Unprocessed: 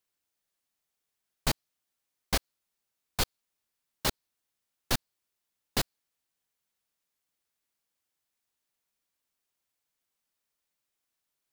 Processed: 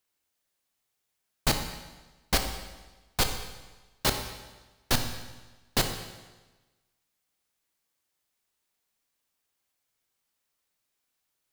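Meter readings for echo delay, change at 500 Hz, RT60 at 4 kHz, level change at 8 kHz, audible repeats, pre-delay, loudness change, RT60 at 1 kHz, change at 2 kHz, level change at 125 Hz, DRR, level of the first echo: no echo audible, +4.5 dB, 1.2 s, +4.0 dB, no echo audible, 17 ms, +3.0 dB, 1.2 s, +4.0 dB, +4.0 dB, 5.0 dB, no echo audible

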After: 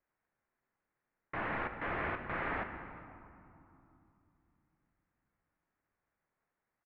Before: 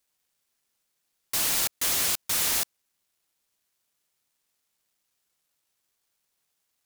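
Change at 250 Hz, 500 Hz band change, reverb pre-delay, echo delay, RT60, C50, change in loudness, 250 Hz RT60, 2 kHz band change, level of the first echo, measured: +1.5 dB, +1.0 dB, 3 ms, 399 ms, 2.9 s, 8.0 dB, −14.0 dB, 4.1 s, −2.5 dB, −23.0 dB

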